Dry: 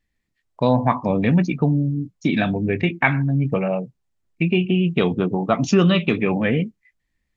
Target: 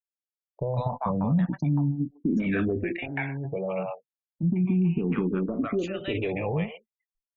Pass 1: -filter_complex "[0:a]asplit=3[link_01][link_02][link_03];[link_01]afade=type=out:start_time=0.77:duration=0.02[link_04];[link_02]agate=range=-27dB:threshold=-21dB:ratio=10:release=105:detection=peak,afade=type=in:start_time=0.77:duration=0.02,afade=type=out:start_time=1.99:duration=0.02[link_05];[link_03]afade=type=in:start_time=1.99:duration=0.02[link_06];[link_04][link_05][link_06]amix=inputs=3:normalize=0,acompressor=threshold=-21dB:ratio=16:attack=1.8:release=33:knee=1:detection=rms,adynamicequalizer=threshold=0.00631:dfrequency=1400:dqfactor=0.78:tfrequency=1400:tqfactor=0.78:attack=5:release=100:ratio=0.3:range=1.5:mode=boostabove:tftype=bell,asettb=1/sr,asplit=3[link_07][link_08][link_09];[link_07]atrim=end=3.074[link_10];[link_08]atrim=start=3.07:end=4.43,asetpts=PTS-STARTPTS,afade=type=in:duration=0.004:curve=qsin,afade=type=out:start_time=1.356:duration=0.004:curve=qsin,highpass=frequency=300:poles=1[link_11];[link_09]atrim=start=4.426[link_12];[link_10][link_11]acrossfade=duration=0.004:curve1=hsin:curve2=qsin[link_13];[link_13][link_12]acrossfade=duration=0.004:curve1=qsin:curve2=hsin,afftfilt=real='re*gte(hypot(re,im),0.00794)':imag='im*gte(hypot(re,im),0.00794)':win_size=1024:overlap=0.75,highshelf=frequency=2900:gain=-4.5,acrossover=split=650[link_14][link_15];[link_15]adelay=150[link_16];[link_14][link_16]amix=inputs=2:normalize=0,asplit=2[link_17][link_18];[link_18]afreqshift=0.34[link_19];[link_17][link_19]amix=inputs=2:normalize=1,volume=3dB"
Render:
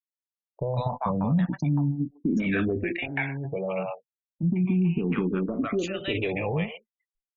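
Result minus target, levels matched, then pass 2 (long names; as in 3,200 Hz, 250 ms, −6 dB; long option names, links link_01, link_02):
8,000 Hz band +7.5 dB
-filter_complex "[0:a]asplit=3[link_01][link_02][link_03];[link_01]afade=type=out:start_time=0.77:duration=0.02[link_04];[link_02]agate=range=-27dB:threshold=-21dB:ratio=10:release=105:detection=peak,afade=type=in:start_time=0.77:duration=0.02,afade=type=out:start_time=1.99:duration=0.02[link_05];[link_03]afade=type=in:start_time=1.99:duration=0.02[link_06];[link_04][link_05][link_06]amix=inputs=3:normalize=0,acompressor=threshold=-21dB:ratio=16:attack=1.8:release=33:knee=1:detection=rms,adynamicequalizer=threshold=0.00631:dfrequency=1400:dqfactor=0.78:tfrequency=1400:tqfactor=0.78:attack=5:release=100:ratio=0.3:range=1.5:mode=boostabove:tftype=bell,asettb=1/sr,asplit=3[link_07][link_08][link_09];[link_07]atrim=end=3.074[link_10];[link_08]atrim=start=3.07:end=4.43,asetpts=PTS-STARTPTS,afade=type=in:duration=0.004:curve=qsin,afade=type=out:start_time=1.356:duration=0.004:curve=qsin,highpass=frequency=300:poles=1[link_11];[link_09]atrim=start=4.426[link_12];[link_10][link_11]acrossfade=duration=0.004:curve1=hsin:curve2=qsin[link_13];[link_13][link_12]acrossfade=duration=0.004:curve1=qsin:curve2=hsin,afftfilt=real='re*gte(hypot(re,im),0.00794)':imag='im*gte(hypot(re,im),0.00794)':win_size=1024:overlap=0.75,highshelf=frequency=2900:gain=-14,acrossover=split=650[link_14][link_15];[link_15]adelay=150[link_16];[link_14][link_16]amix=inputs=2:normalize=0,asplit=2[link_17][link_18];[link_18]afreqshift=0.34[link_19];[link_17][link_19]amix=inputs=2:normalize=1,volume=3dB"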